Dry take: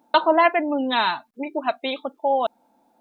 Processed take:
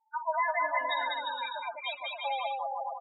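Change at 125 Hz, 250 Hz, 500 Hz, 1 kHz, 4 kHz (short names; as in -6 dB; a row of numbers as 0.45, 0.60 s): n/a, -33.0 dB, -14.5 dB, -8.5 dB, -8.0 dB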